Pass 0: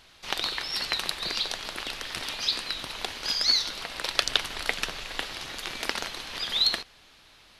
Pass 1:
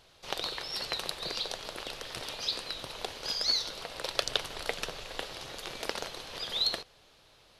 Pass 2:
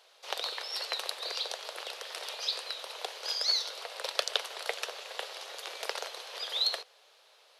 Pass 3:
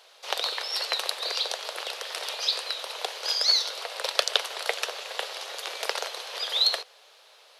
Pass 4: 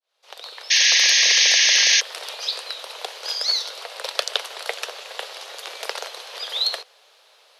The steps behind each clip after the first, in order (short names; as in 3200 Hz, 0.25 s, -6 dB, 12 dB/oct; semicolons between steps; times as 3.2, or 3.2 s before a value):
graphic EQ 125/250/500/2000 Hz +5/-3/+8/-4 dB; hard clip -4 dBFS, distortion -39 dB; gain -5 dB
steep high-pass 440 Hz 36 dB/oct
low shelf 260 Hz -4.5 dB; gain +6.5 dB
opening faded in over 1.27 s; painted sound noise, 0.7–2.01, 1600–6600 Hz -16 dBFS